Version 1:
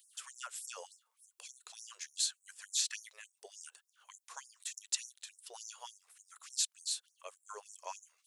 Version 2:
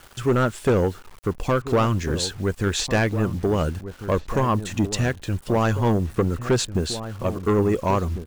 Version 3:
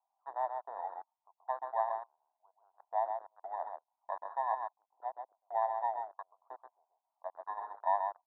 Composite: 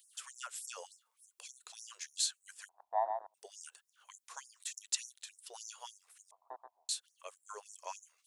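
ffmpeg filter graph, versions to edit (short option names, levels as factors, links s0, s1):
-filter_complex "[2:a]asplit=2[s0][s1];[0:a]asplit=3[s2][s3][s4];[s2]atrim=end=2.692[s5];[s0]atrim=start=2.688:end=3.342[s6];[s3]atrim=start=3.338:end=6.312[s7];[s1]atrim=start=6.308:end=6.892[s8];[s4]atrim=start=6.888[s9];[s5][s6]acrossfade=d=0.004:c1=hsin:c2=hsin[s10];[s10][s7]acrossfade=d=0.004:c1=hsin:c2=hsin[s11];[s11][s8]acrossfade=d=0.004:c1=hsin:c2=hsin[s12];[s12][s9]acrossfade=d=0.004:c1=hsin:c2=hsin"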